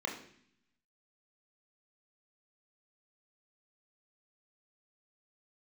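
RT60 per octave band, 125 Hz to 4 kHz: 1.1 s, 1.0 s, 0.65 s, 0.60 s, 0.75 s, 0.80 s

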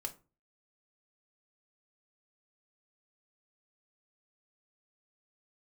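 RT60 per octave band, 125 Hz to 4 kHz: 0.50 s, 0.40 s, 0.35 s, 0.30 s, 0.25 s, 0.20 s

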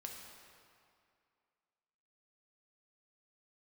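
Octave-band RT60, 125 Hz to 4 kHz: 2.1 s, 2.3 s, 2.3 s, 2.4 s, 2.1 s, 1.8 s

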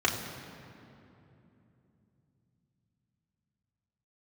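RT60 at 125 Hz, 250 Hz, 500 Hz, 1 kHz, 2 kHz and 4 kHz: 5.4 s, 4.6 s, 3.3 s, 2.7 s, 2.3 s, 1.7 s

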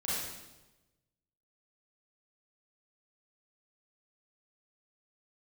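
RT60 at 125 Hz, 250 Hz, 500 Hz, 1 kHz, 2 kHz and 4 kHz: 1.4 s, 1.2 s, 1.1 s, 1.0 s, 0.95 s, 0.95 s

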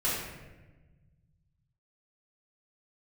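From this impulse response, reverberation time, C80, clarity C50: 1.2 s, 2.5 dB, 0.0 dB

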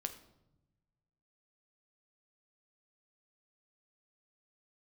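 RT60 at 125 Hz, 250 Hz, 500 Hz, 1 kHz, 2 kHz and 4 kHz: 1.8 s, 1.4 s, 1.0 s, 0.80 s, 0.60 s, 0.60 s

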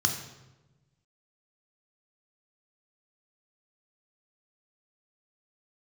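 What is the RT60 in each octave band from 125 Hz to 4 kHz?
1.7 s, 1.4 s, 1.2 s, 1.0 s, 0.85 s, 0.80 s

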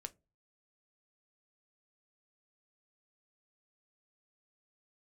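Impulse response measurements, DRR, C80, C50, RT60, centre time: 9.0 dB, 32.5 dB, 23.5 dB, no single decay rate, 2 ms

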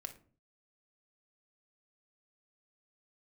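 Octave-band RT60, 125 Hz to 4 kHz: 0.65 s, 0.55 s, 0.50 s, 0.40 s, 0.30 s, 0.25 s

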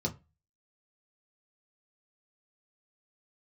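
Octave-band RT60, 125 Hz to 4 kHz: 0.35 s, 0.30 s, 0.25 s, 0.25 s, 0.25 s, 0.15 s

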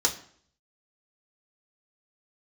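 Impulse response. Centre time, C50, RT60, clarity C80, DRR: 12 ms, 12.5 dB, 0.55 s, 16.0 dB, -1.0 dB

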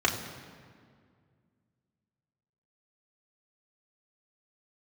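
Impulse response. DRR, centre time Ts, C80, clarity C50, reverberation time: -2.0 dB, 34 ms, 9.0 dB, 7.5 dB, 2.0 s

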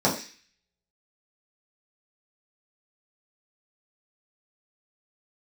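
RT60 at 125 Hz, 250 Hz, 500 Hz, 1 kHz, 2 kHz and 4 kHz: 0.30 s, 0.40 s, 0.35 s, 0.40 s, 0.65 s, 0.60 s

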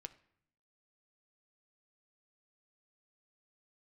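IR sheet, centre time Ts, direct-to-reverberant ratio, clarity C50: 4 ms, 9.5 dB, 16.5 dB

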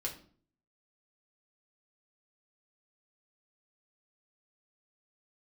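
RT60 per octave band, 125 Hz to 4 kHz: 0.70 s, 0.60 s, 0.50 s, 0.45 s, 0.35 s, 0.35 s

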